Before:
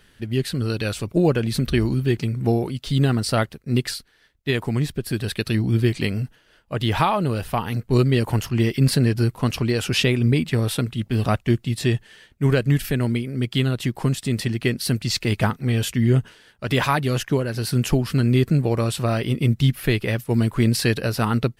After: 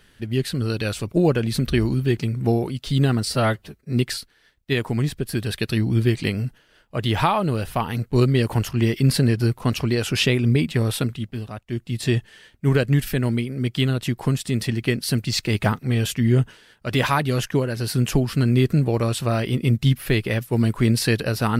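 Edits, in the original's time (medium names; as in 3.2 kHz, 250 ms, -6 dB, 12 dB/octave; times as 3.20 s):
3.25–3.70 s: stretch 1.5×
10.83–11.84 s: dip -14 dB, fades 0.42 s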